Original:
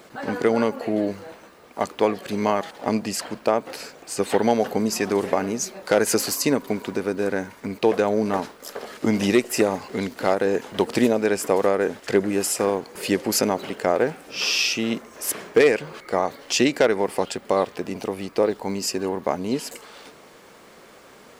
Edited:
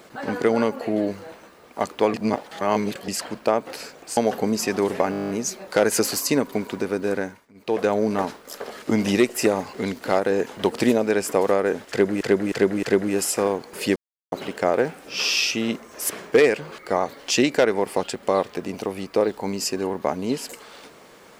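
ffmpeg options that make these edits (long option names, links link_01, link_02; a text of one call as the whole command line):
ffmpeg -i in.wav -filter_complex "[0:a]asplit=20[link_01][link_02][link_03][link_04][link_05][link_06][link_07][link_08][link_09][link_10][link_11][link_12][link_13][link_14][link_15][link_16][link_17][link_18][link_19][link_20];[link_01]atrim=end=2.142[link_21];[link_02]atrim=start=2.138:end=3.082,asetpts=PTS-STARTPTS,areverse[link_22];[link_03]atrim=start=3.078:end=4.172[link_23];[link_04]atrim=start=4.498:end=5.462[link_24];[link_05]atrim=start=5.438:end=5.462[link_25];[link_06]atrim=start=5.438:end=5.462[link_26];[link_07]atrim=start=5.438:end=5.462[link_27];[link_08]atrim=start=5.438:end=5.462[link_28];[link_09]atrim=start=5.438:end=5.462[link_29];[link_10]atrim=start=5.438:end=5.462[link_30];[link_11]atrim=start=5.438:end=5.462[link_31];[link_12]atrim=start=5.438:end=5.462[link_32];[link_13]atrim=start=5.438:end=7.64,asetpts=PTS-STARTPTS,afade=type=out:start_time=1.872:duration=0.33:silence=0.0668344[link_33];[link_14]atrim=start=7.64:end=7.69,asetpts=PTS-STARTPTS,volume=-23.5dB[link_34];[link_15]atrim=start=7.69:end=12.362,asetpts=PTS-STARTPTS,afade=type=in:duration=0.33:silence=0.0668344[link_35];[link_16]atrim=start=12.048:end=12.362[link_36];[link_17]atrim=start=12.048:end=12.362[link_37];[link_18]atrim=start=12.048:end=13.18,asetpts=PTS-STARTPTS,afade=type=out:start_time=1.128:duration=0.004:curve=hsin[link_38];[link_19]atrim=start=13.18:end=13.54,asetpts=PTS-STARTPTS,volume=0[link_39];[link_20]atrim=start=13.54,asetpts=PTS-STARTPTS,afade=type=in:duration=0.004:curve=hsin[link_40];[link_21][link_22]acrossfade=duration=0.004:curve1=hsin:curve2=hsin[link_41];[link_41][link_23]acrossfade=duration=0.004:curve1=hsin:curve2=hsin[link_42];[link_42][link_24]acrossfade=duration=0.004:curve1=hsin:curve2=hsin[link_43];[link_43][link_25]acrossfade=duration=0.004:curve1=hsin:curve2=hsin[link_44];[link_44][link_26]acrossfade=duration=0.004:curve1=hsin:curve2=hsin[link_45];[link_45][link_27]acrossfade=duration=0.004:curve1=hsin:curve2=hsin[link_46];[link_46][link_28]acrossfade=duration=0.004:curve1=hsin:curve2=hsin[link_47];[link_47][link_29]acrossfade=duration=0.004:curve1=hsin:curve2=hsin[link_48];[link_48][link_30]acrossfade=duration=0.004:curve1=hsin:curve2=hsin[link_49];[link_49][link_31]acrossfade=duration=0.004:curve1=hsin:curve2=hsin[link_50];[link_50][link_32]acrossfade=duration=0.004:curve1=hsin:curve2=hsin[link_51];[link_33][link_34][link_35]concat=n=3:v=0:a=1[link_52];[link_51][link_52]acrossfade=duration=0.004:curve1=hsin:curve2=hsin[link_53];[link_53][link_36]acrossfade=duration=0.004:curve1=hsin:curve2=hsin[link_54];[link_54][link_37]acrossfade=duration=0.004:curve1=hsin:curve2=hsin[link_55];[link_38][link_39][link_40]concat=n=3:v=0:a=1[link_56];[link_55][link_56]acrossfade=duration=0.004:curve1=hsin:curve2=hsin" out.wav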